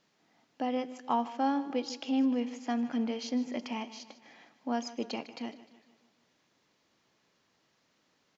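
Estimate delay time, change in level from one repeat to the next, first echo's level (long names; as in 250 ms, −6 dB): 152 ms, −6.0 dB, −16.0 dB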